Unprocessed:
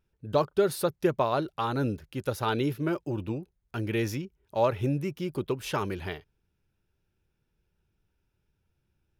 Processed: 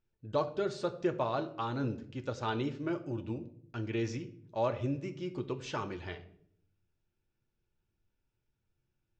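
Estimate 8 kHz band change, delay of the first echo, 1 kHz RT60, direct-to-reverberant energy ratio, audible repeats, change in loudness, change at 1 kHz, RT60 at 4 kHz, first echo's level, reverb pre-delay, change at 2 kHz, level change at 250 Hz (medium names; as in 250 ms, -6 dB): -10.5 dB, no echo, 0.55 s, 5.5 dB, no echo, -6.0 dB, -6.0 dB, 0.45 s, no echo, 3 ms, -6.5 dB, -5.5 dB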